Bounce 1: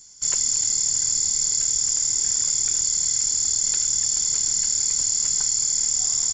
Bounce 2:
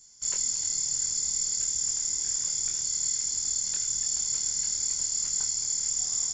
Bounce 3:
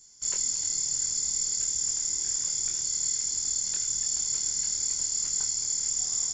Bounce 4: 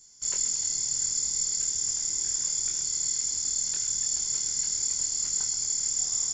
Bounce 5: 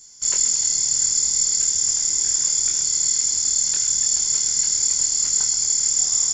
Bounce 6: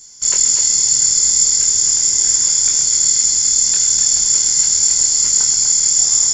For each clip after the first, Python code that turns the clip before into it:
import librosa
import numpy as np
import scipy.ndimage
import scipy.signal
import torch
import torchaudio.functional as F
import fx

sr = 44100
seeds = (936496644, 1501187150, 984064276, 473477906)

y1 = fx.doubler(x, sr, ms=23.0, db=-4.5)
y1 = F.gain(torch.from_numpy(y1), -8.0).numpy()
y2 = fx.peak_eq(y1, sr, hz=350.0, db=3.0, octaves=0.64)
y3 = y2 + 10.0 ** (-11.0 / 20.0) * np.pad(y2, (int(129 * sr / 1000.0), 0))[:len(y2)]
y4 = fx.low_shelf(y3, sr, hz=470.0, db=-3.5)
y4 = F.gain(torch.from_numpy(y4), 8.5).numpy()
y5 = y4 + 10.0 ** (-6.5 / 20.0) * np.pad(y4, (int(249 * sr / 1000.0), 0))[:len(y4)]
y5 = F.gain(torch.from_numpy(y5), 5.5).numpy()